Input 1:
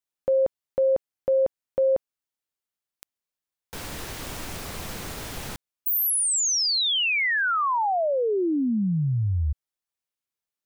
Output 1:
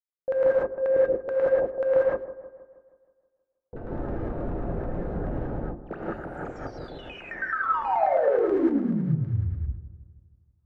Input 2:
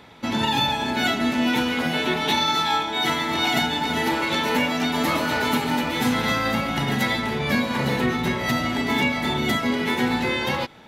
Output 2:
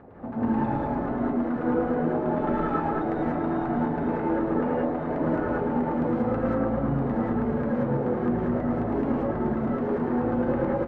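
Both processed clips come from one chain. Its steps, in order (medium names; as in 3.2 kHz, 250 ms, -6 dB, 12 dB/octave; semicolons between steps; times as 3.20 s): median filter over 41 samples; hum notches 50/100/150/200/250/300/350/400/450 Hz; reverse; compression 6:1, threshold -34 dBFS; reverse; LFO low-pass saw down 9.3 Hz 420–1600 Hz; on a send: feedback echo behind a low-pass 159 ms, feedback 54%, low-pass 1.2 kHz, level -13.5 dB; on the sum: gated-style reverb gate 210 ms rising, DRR -6 dB; trim +2 dB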